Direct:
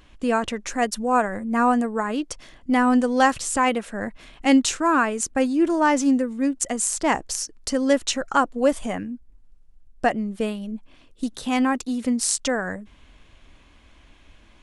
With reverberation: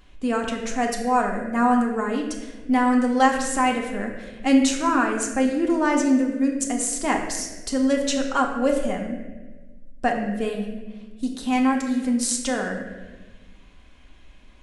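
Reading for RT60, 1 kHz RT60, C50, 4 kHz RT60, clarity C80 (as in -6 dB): 1.3 s, 1.1 s, 5.0 dB, 0.90 s, 6.5 dB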